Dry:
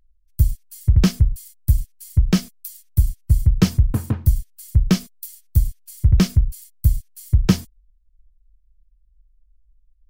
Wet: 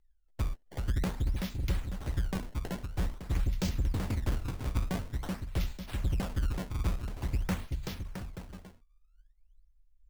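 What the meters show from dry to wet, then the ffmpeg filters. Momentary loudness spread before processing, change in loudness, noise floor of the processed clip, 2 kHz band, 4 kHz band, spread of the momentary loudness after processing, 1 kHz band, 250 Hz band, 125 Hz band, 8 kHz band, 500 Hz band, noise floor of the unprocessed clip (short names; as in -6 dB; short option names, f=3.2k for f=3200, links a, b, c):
11 LU, -14.5 dB, -65 dBFS, -6.5 dB, -12.0 dB, 7 LU, -4.0 dB, -14.5 dB, -14.5 dB, -14.0 dB, -8.0 dB, -59 dBFS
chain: -filter_complex "[0:a]acrossover=split=4100[a][b];[a]asoftclip=type=tanh:threshold=-16.5dB[c];[c][b]amix=inputs=2:normalize=0,aecho=1:1:380|665|878.8|1039|1159:0.631|0.398|0.251|0.158|0.1,flanger=delay=2.3:depth=1.2:regen=-72:speed=1.8:shape=sinusoidal,acrusher=samples=21:mix=1:aa=0.000001:lfo=1:lforange=33.6:lforate=0.48,volume=-5.5dB"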